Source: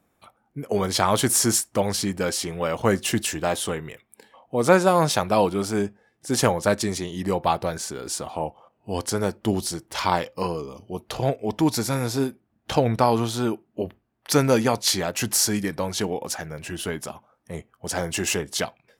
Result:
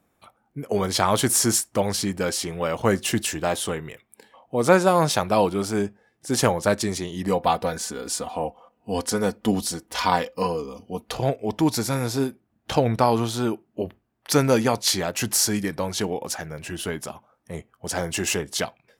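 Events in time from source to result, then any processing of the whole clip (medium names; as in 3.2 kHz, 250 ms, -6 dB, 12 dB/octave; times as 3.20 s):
7.27–11.15 s: comb 4.1 ms, depth 61%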